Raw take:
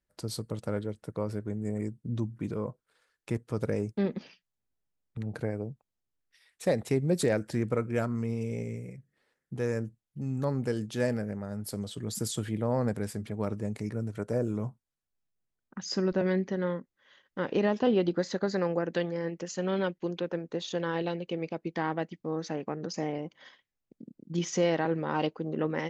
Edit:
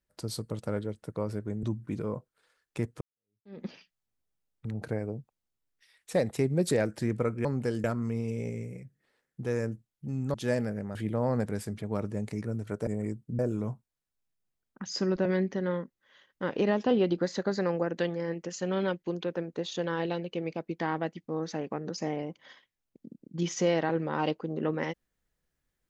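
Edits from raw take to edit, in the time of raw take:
1.63–2.15 s: move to 14.35 s
3.53–4.16 s: fade in exponential
10.47–10.86 s: move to 7.97 s
11.47–12.43 s: delete

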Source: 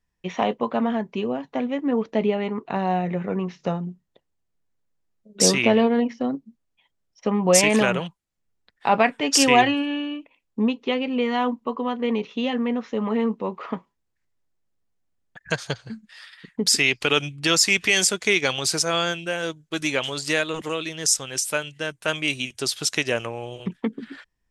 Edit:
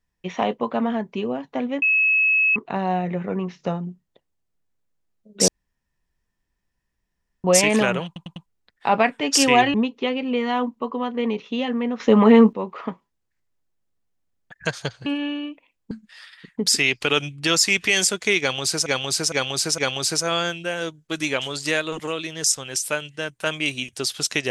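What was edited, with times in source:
1.82–2.56 s: bleep 2.58 kHz -15 dBFS
5.48–7.44 s: room tone
8.06 s: stutter in place 0.10 s, 4 plays
9.74–10.59 s: move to 15.91 s
12.85–13.38 s: gain +11 dB
18.40–18.86 s: loop, 4 plays

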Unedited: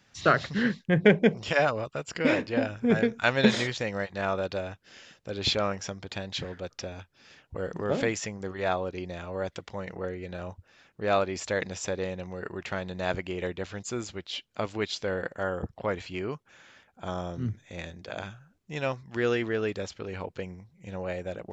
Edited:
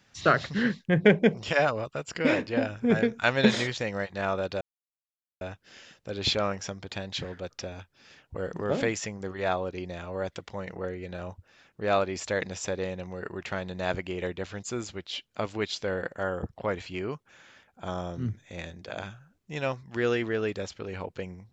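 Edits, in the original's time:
4.61 s: insert silence 0.80 s

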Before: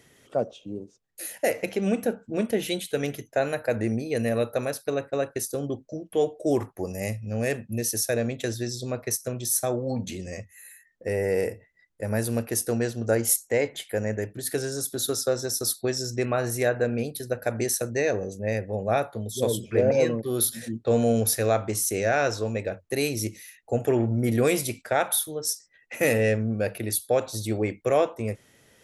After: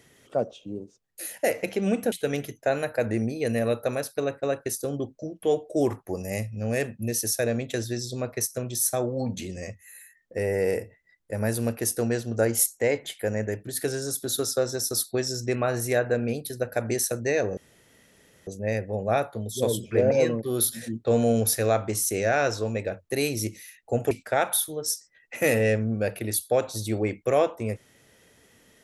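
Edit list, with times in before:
2.12–2.82 s: delete
18.27 s: insert room tone 0.90 s
23.91–24.70 s: delete

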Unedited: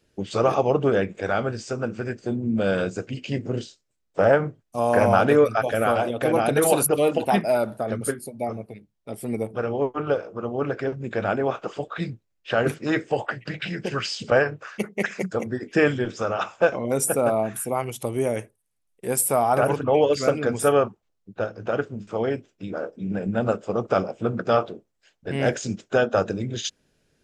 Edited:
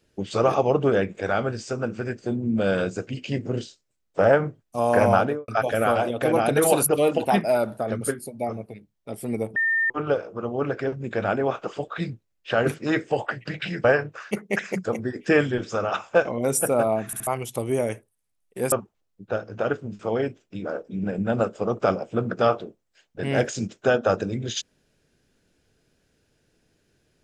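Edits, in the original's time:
5.11–5.48 s: studio fade out
9.56–9.90 s: bleep 1.81 kHz -19 dBFS
13.84–14.31 s: delete
17.53 s: stutter in place 0.07 s, 3 plays
19.19–20.80 s: delete

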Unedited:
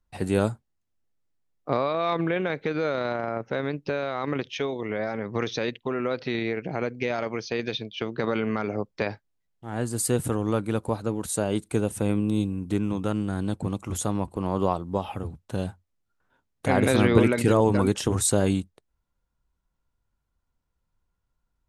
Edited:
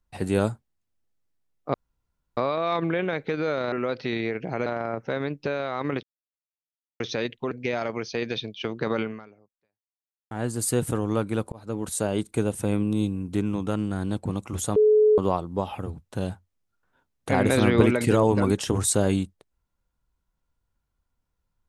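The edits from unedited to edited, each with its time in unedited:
1.74 s: insert room tone 0.63 s
4.46–5.43 s: mute
5.94–6.88 s: move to 3.09 s
8.38–9.68 s: fade out exponential
10.89–11.18 s: fade in
14.13–14.55 s: bleep 427 Hz -14 dBFS

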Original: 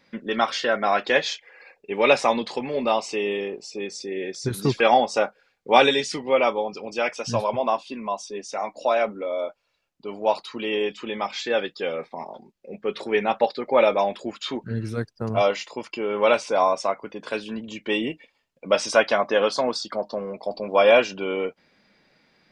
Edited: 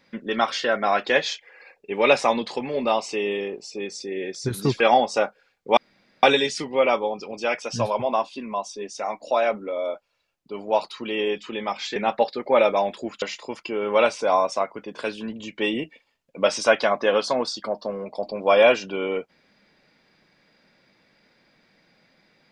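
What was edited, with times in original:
5.77 s: insert room tone 0.46 s
11.50–13.18 s: delete
14.44–15.50 s: delete

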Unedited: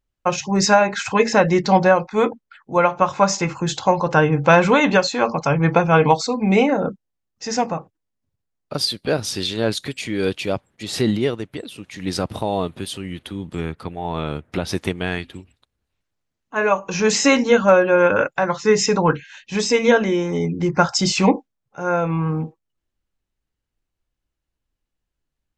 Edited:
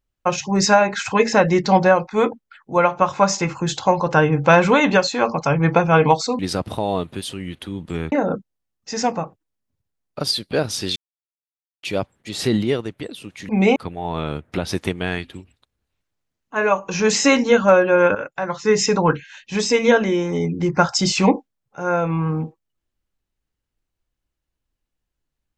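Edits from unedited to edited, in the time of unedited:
6.39–6.66 s: swap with 12.03–13.76 s
9.50–10.37 s: mute
18.15–18.81 s: fade in, from -12 dB

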